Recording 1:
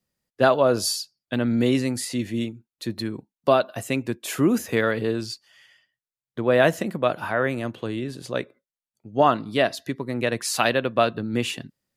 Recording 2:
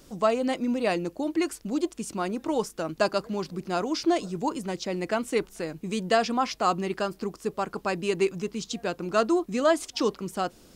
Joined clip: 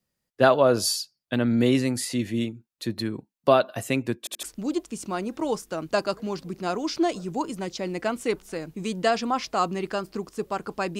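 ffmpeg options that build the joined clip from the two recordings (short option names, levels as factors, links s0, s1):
-filter_complex "[0:a]apad=whole_dur=10.99,atrim=end=10.99,asplit=3[s0][s1][s2];[s0]atrim=end=4.272[s3];[s1]atrim=start=4.188:end=4.272[s4];[s2]atrim=start=4.188:end=4.272[s5];[1:a]atrim=start=1.498:end=8.06[s6];[s3][s4]acrossfade=d=0.004:c1=hsin:c2=hsin[s7];[s7][s5]acrossfade=d=0.004:c1=hsin:c2=hsin[s8];[s8][s6]acrossfade=d=0.004:c1=hsin:c2=hsin"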